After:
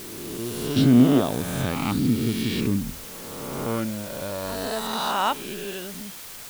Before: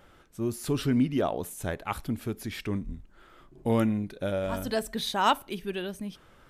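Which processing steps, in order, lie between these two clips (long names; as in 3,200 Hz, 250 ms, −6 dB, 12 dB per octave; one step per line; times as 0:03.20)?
peak hold with a rise ahead of every peak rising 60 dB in 1.92 s
0:00.76–0:02.90: octave-band graphic EQ 125/250/4,000 Hz +10/+10/+11 dB
bit-depth reduction 6 bits, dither triangular
level −4 dB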